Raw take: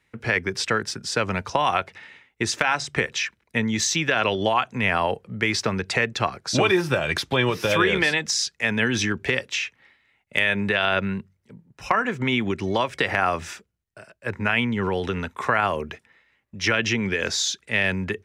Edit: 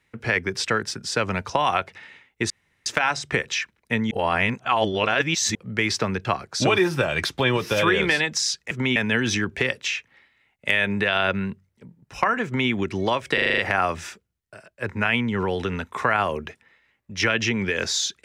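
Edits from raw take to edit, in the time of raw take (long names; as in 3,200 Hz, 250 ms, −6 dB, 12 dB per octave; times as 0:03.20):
0:02.50: splice in room tone 0.36 s
0:03.75–0:05.19: reverse
0:05.89–0:06.18: remove
0:12.13–0:12.38: duplicate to 0:08.64
0:13.02: stutter 0.04 s, 7 plays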